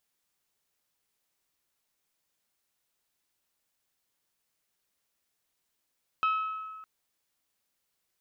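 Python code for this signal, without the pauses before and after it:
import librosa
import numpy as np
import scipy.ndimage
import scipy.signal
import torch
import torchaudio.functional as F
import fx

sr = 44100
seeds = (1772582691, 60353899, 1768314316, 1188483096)

y = fx.strike_glass(sr, length_s=0.61, level_db=-22.5, body='bell', hz=1290.0, decay_s=1.67, tilt_db=9.5, modes=5)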